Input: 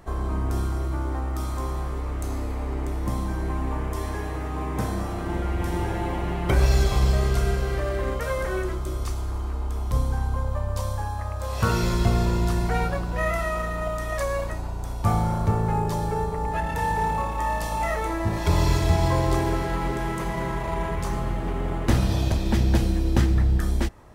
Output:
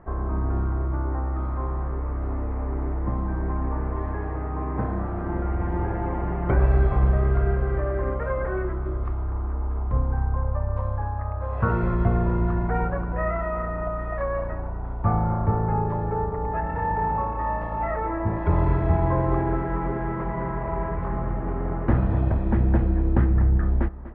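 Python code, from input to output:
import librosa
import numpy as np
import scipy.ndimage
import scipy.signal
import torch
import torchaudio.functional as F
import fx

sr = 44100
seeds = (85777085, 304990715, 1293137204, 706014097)

p1 = scipy.signal.sosfilt(scipy.signal.butter(4, 1700.0, 'lowpass', fs=sr, output='sos'), x)
y = p1 + fx.echo_single(p1, sr, ms=245, db=-15.0, dry=0)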